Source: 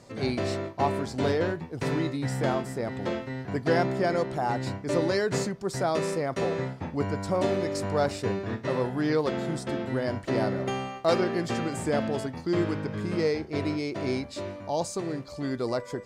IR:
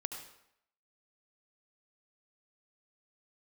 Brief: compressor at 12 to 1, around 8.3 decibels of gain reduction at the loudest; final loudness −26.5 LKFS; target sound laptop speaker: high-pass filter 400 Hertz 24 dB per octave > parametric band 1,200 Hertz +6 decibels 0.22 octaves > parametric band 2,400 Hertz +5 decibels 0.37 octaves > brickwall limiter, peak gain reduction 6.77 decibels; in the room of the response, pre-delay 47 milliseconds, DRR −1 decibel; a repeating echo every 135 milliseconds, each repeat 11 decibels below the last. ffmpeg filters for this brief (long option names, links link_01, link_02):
-filter_complex "[0:a]acompressor=threshold=-27dB:ratio=12,aecho=1:1:135|270|405:0.282|0.0789|0.0221,asplit=2[link_01][link_02];[1:a]atrim=start_sample=2205,adelay=47[link_03];[link_02][link_03]afir=irnorm=-1:irlink=0,volume=1dB[link_04];[link_01][link_04]amix=inputs=2:normalize=0,highpass=frequency=400:width=0.5412,highpass=frequency=400:width=1.3066,equalizer=frequency=1200:width_type=o:width=0.22:gain=6,equalizer=frequency=2400:width_type=o:width=0.37:gain=5,volume=6.5dB,alimiter=limit=-16dB:level=0:latency=1"